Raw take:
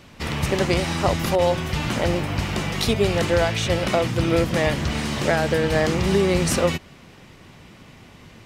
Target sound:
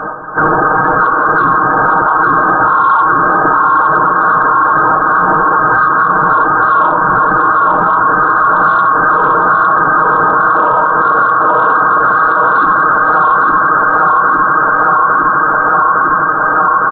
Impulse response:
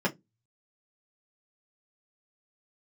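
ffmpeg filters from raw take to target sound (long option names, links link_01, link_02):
-filter_complex "[0:a]highpass=230,lowpass=frequency=2300:width_type=q:width=0.5098,lowpass=frequency=2300:width_type=q:width=0.6013,lowpass=frequency=2300:width_type=q:width=0.9,lowpass=frequency=2300:width_type=q:width=2.563,afreqshift=-2700,tremolo=f=4.1:d=0.62,afftfilt=real='hypot(re,im)*cos(2*PI*random(0))':imag='hypot(re,im)*sin(2*PI*random(1))':win_size=512:overlap=0.75,asplit=2[link_01][link_02];[link_02]asetrate=55563,aresample=44100,atempo=0.793701,volume=-4dB[link_03];[link_01][link_03]amix=inputs=2:normalize=0,aecho=1:1:429|858|1287|1716|2145|2574|3003|3432:0.668|0.394|0.233|0.137|0.081|0.0478|0.0282|0.0166,acontrast=53,asetrate=22050,aresample=44100,highshelf=frequency=2100:gain=8,acompressor=threshold=-32dB:ratio=3,aecho=1:1:6.4:0.83,alimiter=level_in=28dB:limit=-1dB:release=50:level=0:latency=1,volume=-1dB"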